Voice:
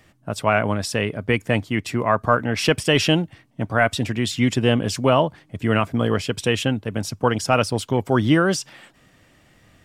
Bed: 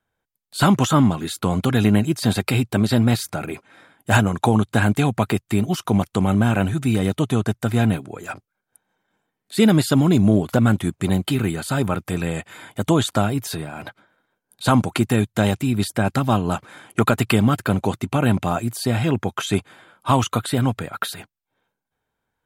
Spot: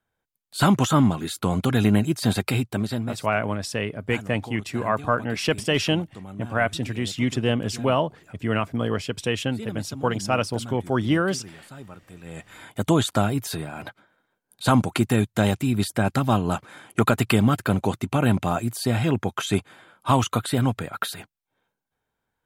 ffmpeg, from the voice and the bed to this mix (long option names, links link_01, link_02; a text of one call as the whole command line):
ffmpeg -i stem1.wav -i stem2.wav -filter_complex "[0:a]adelay=2800,volume=-4.5dB[link_01];[1:a]volume=16dB,afade=type=out:start_time=2.42:duration=0.82:silence=0.125893,afade=type=in:start_time=12.22:duration=0.5:silence=0.11885[link_02];[link_01][link_02]amix=inputs=2:normalize=0" out.wav